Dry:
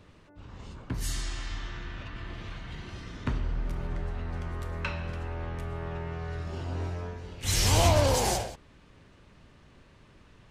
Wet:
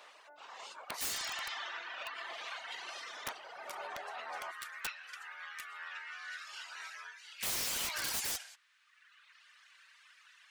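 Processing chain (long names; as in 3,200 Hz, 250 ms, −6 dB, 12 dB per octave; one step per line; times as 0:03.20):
reverb reduction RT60 1.3 s
Chebyshev high-pass filter 680 Hz, order 3, from 0:04.50 1,500 Hz
downward compressor 6 to 1, threshold −40 dBFS, peak gain reduction 12 dB
wrap-around overflow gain 37 dB
level +7.5 dB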